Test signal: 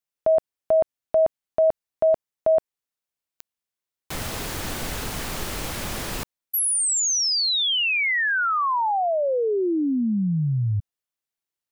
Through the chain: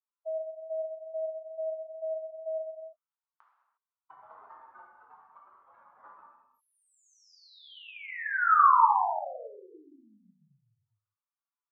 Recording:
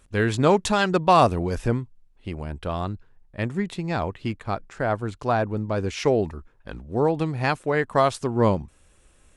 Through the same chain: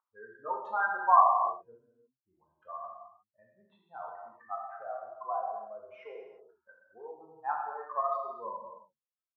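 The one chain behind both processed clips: spectral contrast enhancement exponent 3.2; Butterworth band-pass 1.1 kHz, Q 2.5; gated-style reverb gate 380 ms falling, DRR -2.5 dB

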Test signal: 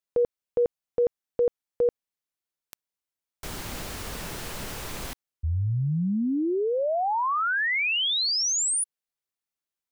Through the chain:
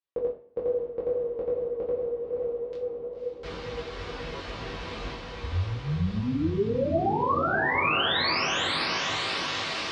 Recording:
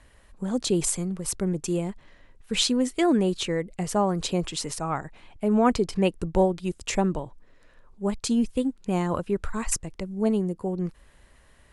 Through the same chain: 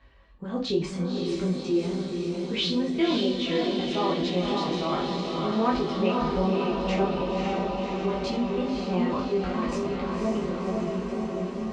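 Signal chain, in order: high-pass 45 Hz; reverb removal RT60 0.66 s; low-pass 4.4 kHz 24 dB/octave; de-hum 126.9 Hz, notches 28; on a send: echo that smears into a reverb 544 ms, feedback 72%, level -3 dB; on the sum: chorus 2.4 Hz, delay 19 ms, depth 3.2 ms; two-slope reverb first 0.35 s, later 1.7 s, from -25 dB, DRR -2 dB; in parallel at -1.5 dB: peak limiter -20 dBFS; on the sum: trim -6 dB

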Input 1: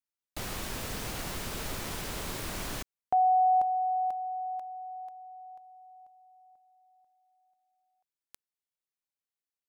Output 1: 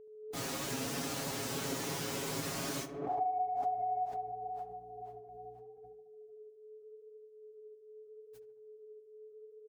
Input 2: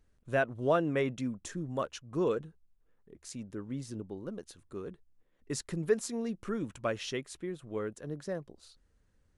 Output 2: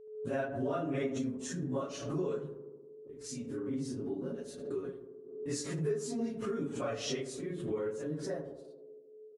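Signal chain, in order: phase randomisation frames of 100 ms; high-pass 210 Hz 12 dB/octave; hum 60 Hz, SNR 34 dB; bass shelf 340 Hz +10.5 dB; comb 7.3 ms, depth 76%; dynamic bell 6.2 kHz, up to +5 dB, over -54 dBFS, Q 1.3; compression 4:1, threshold -28 dBFS; gate -51 dBFS, range -40 dB; whistle 430 Hz -47 dBFS; tape echo 75 ms, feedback 83%, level -8 dB, low-pass 1.1 kHz; swell ahead of each attack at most 65 dB/s; trim -4.5 dB

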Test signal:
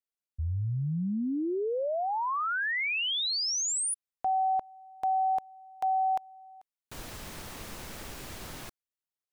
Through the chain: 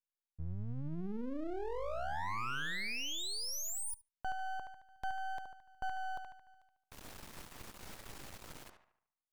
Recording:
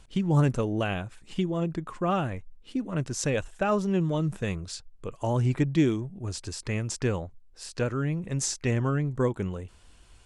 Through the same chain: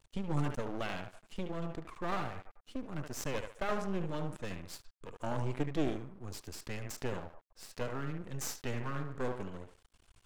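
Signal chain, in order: band-passed feedback delay 73 ms, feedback 49%, band-pass 1 kHz, level -5 dB; vibrato 0.44 Hz 11 cents; half-wave rectifier; trim -5.5 dB

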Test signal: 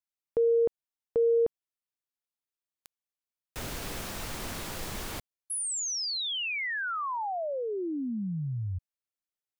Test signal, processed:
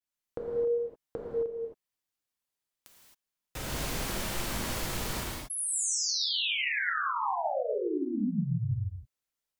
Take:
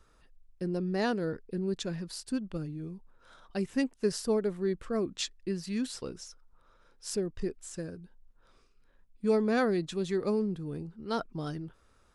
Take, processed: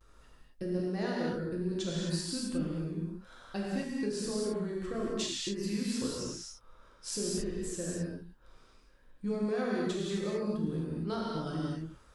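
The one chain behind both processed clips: vibrato 0.41 Hz 33 cents; compression 10:1, threshold -34 dBFS; gated-style reverb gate 290 ms flat, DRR -5 dB; trim -1 dB

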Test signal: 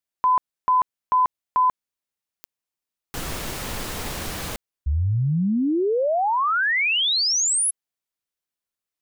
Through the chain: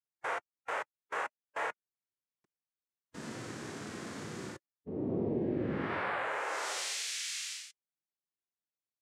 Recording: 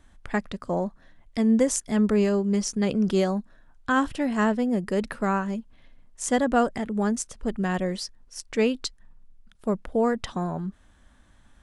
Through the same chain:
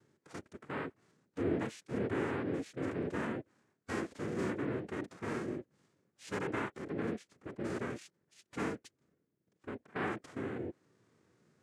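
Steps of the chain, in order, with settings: tilt EQ -2 dB/octave; noise-vocoded speech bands 3; dynamic bell 140 Hz, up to -6 dB, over -34 dBFS, Q 1.1; compression 1.5:1, threshold -29 dBFS; harmonic-percussive split percussive -13 dB; trim -6 dB

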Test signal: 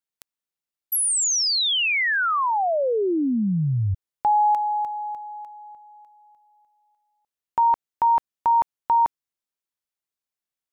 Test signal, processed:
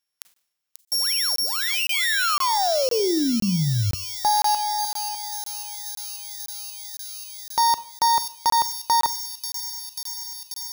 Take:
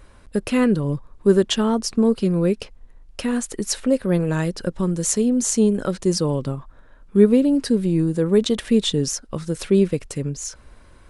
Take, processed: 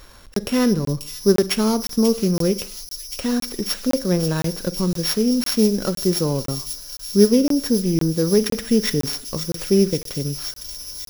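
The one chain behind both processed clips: sorted samples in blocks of 8 samples; on a send: feedback echo behind a high-pass 538 ms, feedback 78%, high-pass 4.9 kHz, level -3.5 dB; on the sum: Schroeder reverb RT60 0.51 s, combs from 33 ms, DRR 15 dB; crackling interface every 0.51 s, samples 1024, zero, from 0.34 s; tape noise reduction on one side only encoder only

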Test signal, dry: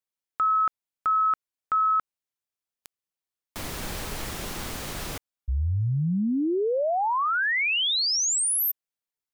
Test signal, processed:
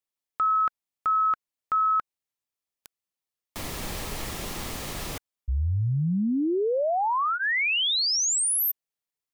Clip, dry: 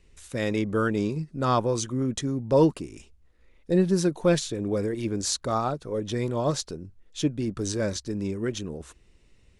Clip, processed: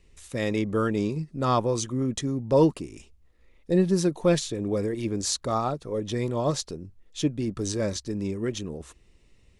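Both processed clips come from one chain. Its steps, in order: band-stop 1.5 kHz, Q 10

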